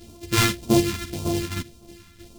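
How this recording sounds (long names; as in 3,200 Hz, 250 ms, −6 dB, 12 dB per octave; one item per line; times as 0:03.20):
a buzz of ramps at a fixed pitch in blocks of 128 samples
phaser sweep stages 2, 1.8 Hz, lowest notch 560–1,700 Hz
tremolo saw down 3.2 Hz, depth 60%
a shimmering, thickened sound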